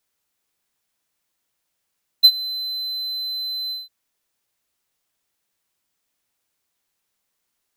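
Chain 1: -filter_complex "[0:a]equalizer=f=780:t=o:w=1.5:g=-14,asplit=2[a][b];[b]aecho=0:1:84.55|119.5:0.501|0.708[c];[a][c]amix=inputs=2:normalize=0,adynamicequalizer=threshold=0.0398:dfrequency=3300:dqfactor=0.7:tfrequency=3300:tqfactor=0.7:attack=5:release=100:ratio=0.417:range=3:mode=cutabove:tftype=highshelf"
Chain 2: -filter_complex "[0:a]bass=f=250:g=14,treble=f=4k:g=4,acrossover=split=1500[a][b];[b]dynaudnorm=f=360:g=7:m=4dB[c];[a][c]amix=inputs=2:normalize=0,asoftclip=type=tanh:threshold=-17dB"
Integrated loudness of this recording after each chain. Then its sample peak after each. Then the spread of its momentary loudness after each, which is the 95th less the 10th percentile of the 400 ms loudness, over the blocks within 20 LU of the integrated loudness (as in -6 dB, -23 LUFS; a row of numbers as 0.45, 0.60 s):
-20.0, -22.0 LUFS; -3.5, -17.0 dBFS; 14, 4 LU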